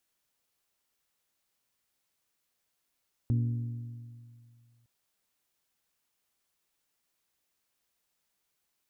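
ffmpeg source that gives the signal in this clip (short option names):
-f lavfi -i "aevalsrc='0.0708*pow(10,-3*t/2.21)*sin(2*PI*118*t)+0.0266*pow(10,-3*t/1.795)*sin(2*PI*236*t)+0.01*pow(10,-3*t/1.7)*sin(2*PI*283.2*t)+0.00376*pow(10,-3*t/1.589)*sin(2*PI*354*t)+0.00141*pow(10,-3*t/1.458)*sin(2*PI*472*t)':d=1.56:s=44100"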